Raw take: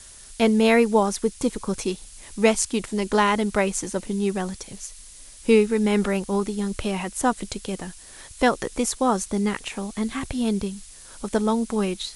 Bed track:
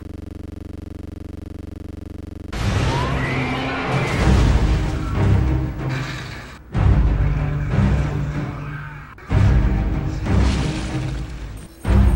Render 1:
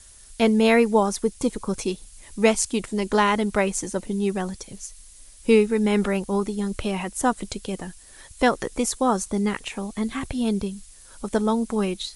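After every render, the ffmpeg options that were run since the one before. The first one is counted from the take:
-af "afftdn=nr=6:nf=-45"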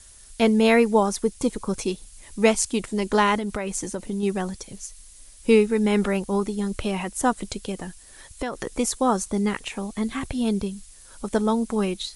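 -filter_complex "[0:a]asettb=1/sr,asplit=3[a][b][c];[a]atrim=end=3.364[d];[b]atrim=start=3.36:end=4.23,asetpts=PTS-STARTPTS,afade=t=in:d=0.004:c=qsin,afade=t=out:st=0.866:d=0.004:c=qsin,acompressor=threshold=-23dB:ratio=10:attack=3.2:release=140:knee=1:detection=peak[e];[c]atrim=start=4.226[f];[d][e]acrossfade=d=0.004:c1=hsin:c2=qsin[g];[g][f]acrossfade=d=0.004:c1=qsin:c2=hsin,asettb=1/sr,asplit=3[h][i][j];[h]atrim=end=7.714[k];[i]atrim=start=7.71:end=8.67,asetpts=PTS-STARTPTS,afade=t=in:d=0.004:c=qsin,afade=t=out:st=0.956:d=0.004:c=qsin,acompressor=threshold=-24dB:ratio=6:attack=3.2:release=140:knee=1:detection=peak[l];[j]atrim=start=8.666[m];[k][l]acrossfade=d=0.004:c1=hsin:c2=qsin[n];[n][m]acrossfade=d=0.004:c1=qsin:c2=hsin"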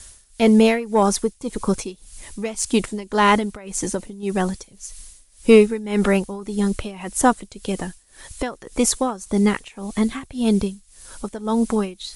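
-filter_complex "[0:a]asplit=2[a][b];[b]aeval=exprs='0.596*sin(PI/2*1.58*val(0)/0.596)':c=same,volume=-6dB[c];[a][c]amix=inputs=2:normalize=0,tremolo=f=1.8:d=0.87"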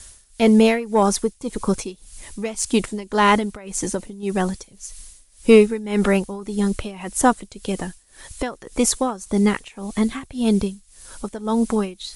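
-af anull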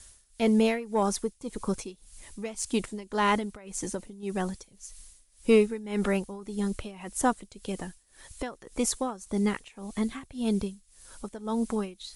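-af "volume=-9dB"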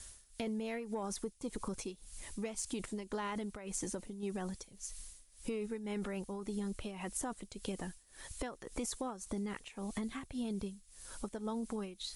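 -af "alimiter=limit=-23dB:level=0:latency=1:release=23,acompressor=threshold=-36dB:ratio=6"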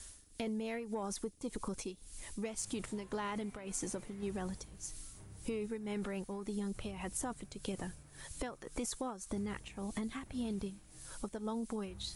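-filter_complex "[1:a]volume=-38dB[a];[0:a][a]amix=inputs=2:normalize=0"

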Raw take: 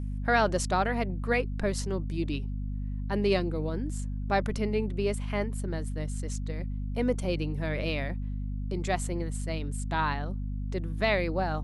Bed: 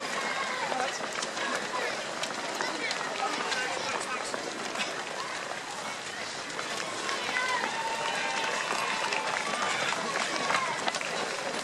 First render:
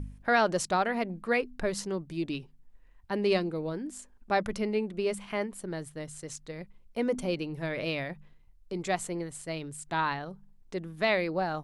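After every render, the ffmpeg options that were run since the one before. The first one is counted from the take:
-af "bandreject=f=50:t=h:w=4,bandreject=f=100:t=h:w=4,bandreject=f=150:t=h:w=4,bandreject=f=200:t=h:w=4,bandreject=f=250:t=h:w=4"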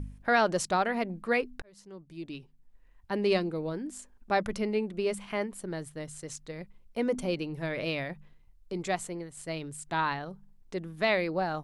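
-filter_complex "[0:a]asplit=3[a][b][c];[a]atrim=end=1.62,asetpts=PTS-STARTPTS,afade=t=out:st=1.616:d=0.004:c=hsin[d];[b]atrim=start=1.62:end=9.37,asetpts=PTS-STARTPTS,afade=t=in:d=1.51,afade=t=out:st=7.2:d=0.55:silence=0.473151[e];[c]atrim=start=9.37,asetpts=PTS-STARTPTS,afade=t=in:d=0.004:c=hsin:silence=0.473151[f];[d][e][f]concat=n=3:v=0:a=1"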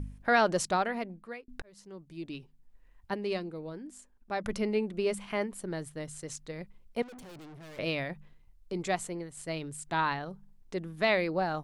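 -filter_complex "[0:a]asettb=1/sr,asplit=3[a][b][c];[a]atrim=end=7.024[d];[b]atrim=start=7.02:end=7.79,asetpts=PTS-STARTPTS,afade=t=in:d=0.004:c=qsin,afade=t=out:st=0.766:d=0.004:c=qsin,aeval=exprs='(tanh(224*val(0)+0.25)-tanh(0.25))/224':c=same[e];[c]atrim=start=7.786[f];[d][e]acrossfade=d=0.004:c1=hsin:c2=qsin[g];[g][f]acrossfade=d=0.004:c1=qsin:c2=hsin,asplit=4[h][i][j][k];[h]atrim=end=1.48,asetpts=PTS-STARTPTS,afade=t=out:st=0.66:d=0.82[l];[i]atrim=start=1.48:end=3.142,asetpts=PTS-STARTPTS,afade=t=in:d=0.004:c=hsin[m];[j]atrim=start=3.138:end=4.442,asetpts=PTS-STARTPTS,volume=-7dB[n];[k]atrim=start=4.438[o];[l][m]concat=n=2:v=0:a=1[p];[p][n]acrossfade=d=0.004:c1=hsin:c2=hsin[q];[q][o]acrossfade=d=0.004:c1=hsin:c2=hsin"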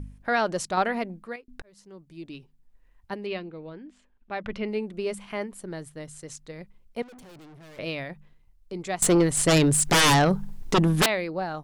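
-filter_complex "[0:a]asettb=1/sr,asplit=3[a][b][c];[a]atrim=end=0.774[d];[b]atrim=start=0.77:end=1.36,asetpts=PTS-STARTPTS,afade=t=in:d=0.004:c=qsin,afade=t=out:st=0.586:d=0.004:c=qsin,acontrast=46[e];[c]atrim=start=1.356[f];[d][e]acrossfade=d=0.004:c1=hsin:c2=qsin[g];[g][f]acrossfade=d=0.004:c1=qsin:c2=hsin,asettb=1/sr,asplit=3[h][i][j];[h]atrim=end=3.264[k];[i]atrim=start=3.26:end=4.68,asetpts=PTS-STARTPTS,afade=t=in:d=0.004:c=qsin,afade=t=out:st=1.416:d=0.004:c=qsin,lowpass=f=3k:t=q:w=1.6[l];[j]atrim=start=4.676[m];[k][l]acrossfade=d=0.004:c1=hsin:c2=qsin[n];[n][m]acrossfade=d=0.004:c1=qsin:c2=hsin,asettb=1/sr,asplit=3[o][p][q];[o]atrim=end=9.024[r];[p]atrim=start=9.02:end=11.06,asetpts=PTS-STARTPTS,afade=t=in:d=0.004:c=qsin,afade=t=out:st=2.036:d=0.004:c=qsin,aeval=exprs='0.178*sin(PI/2*7.94*val(0)/0.178)':c=same[s];[q]atrim=start=11.056[t];[r][s]acrossfade=d=0.004:c1=hsin:c2=qsin[u];[u][t]acrossfade=d=0.004:c1=qsin:c2=hsin"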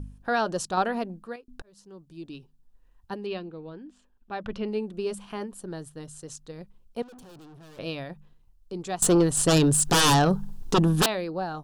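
-af "equalizer=f=2.1k:w=4.5:g=-14,bandreject=f=610:w=12"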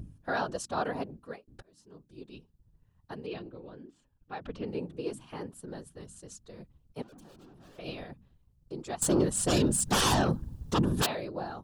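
-af "afftfilt=real='hypot(re,im)*cos(2*PI*random(0))':imag='hypot(re,im)*sin(2*PI*random(1))':win_size=512:overlap=0.75"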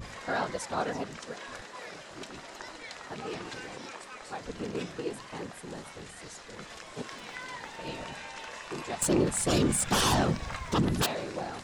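-filter_complex "[1:a]volume=-12dB[a];[0:a][a]amix=inputs=2:normalize=0"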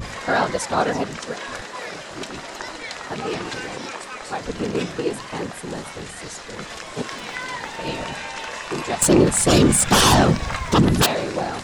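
-af "volume=11dB"

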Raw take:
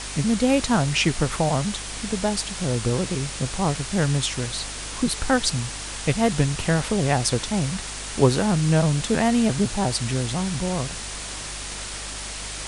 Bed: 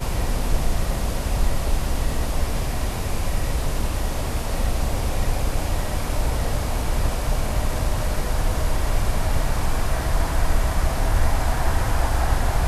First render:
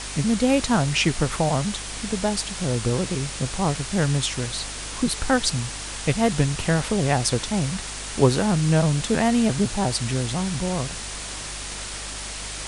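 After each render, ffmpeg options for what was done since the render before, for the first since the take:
-af anull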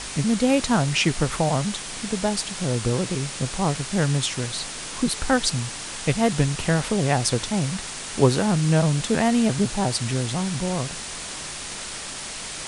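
-af "bandreject=f=50:t=h:w=4,bandreject=f=100:t=h:w=4"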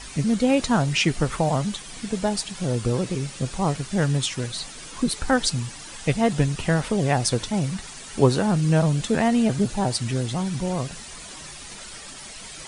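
-af "afftdn=nr=10:nf=-34"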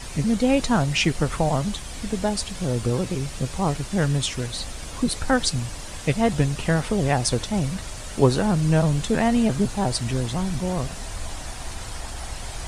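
-filter_complex "[1:a]volume=-14dB[a];[0:a][a]amix=inputs=2:normalize=0"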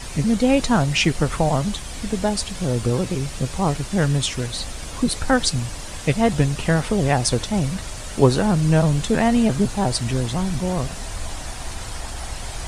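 -af "volume=2.5dB"

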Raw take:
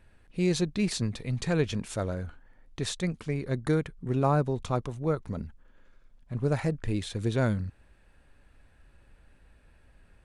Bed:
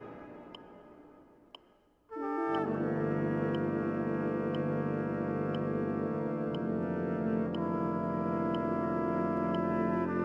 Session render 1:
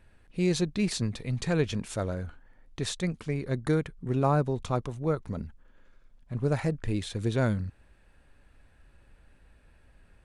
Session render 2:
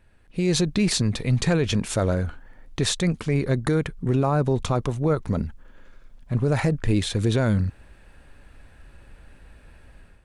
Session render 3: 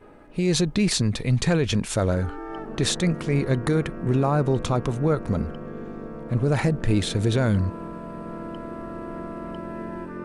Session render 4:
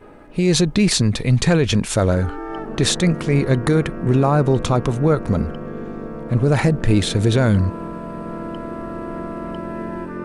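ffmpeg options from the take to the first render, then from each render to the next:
-af anull
-af "alimiter=limit=-22.5dB:level=0:latency=1:release=36,dynaudnorm=f=250:g=3:m=10dB"
-filter_complex "[1:a]volume=-3dB[a];[0:a][a]amix=inputs=2:normalize=0"
-af "volume=5.5dB"

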